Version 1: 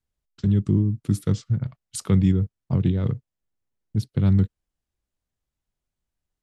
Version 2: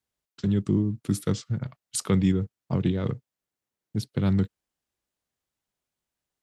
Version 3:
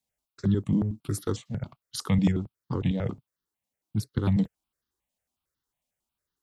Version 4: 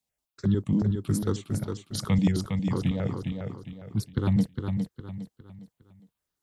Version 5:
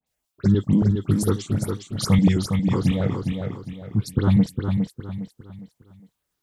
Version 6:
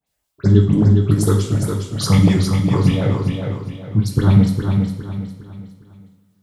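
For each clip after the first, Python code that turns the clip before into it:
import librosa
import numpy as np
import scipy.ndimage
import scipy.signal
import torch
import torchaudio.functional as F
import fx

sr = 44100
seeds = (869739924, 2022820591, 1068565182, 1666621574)

y1 = fx.highpass(x, sr, hz=300.0, slope=6)
y1 = y1 * librosa.db_to_amplitude(3.0)
y2 = fx.phaser_held(y1, sr, hz=11.0, low_hz=370.0, high_hz=2400.0)
y2 = y2 * librosa.db_to_amplitude(2.0)
y3 = fx.echo_feedback(y2, sr, ms=408, feedback_pct=36, wet_db=-5.5)
y4 = fx.dispersion(y3, sr, late='highs', ms=71.0, hz=2700.0)
y4 = y4 * librosa.db_to_amplitude(6.0)
y5 = fx.rev_double_slope(y4, sr, seeds[0], early_s=0.61, late_s=2.4, knee_db=-17, drr_db=1.5)
y5 = y5 * librosa.db_to_amplitude(3.0)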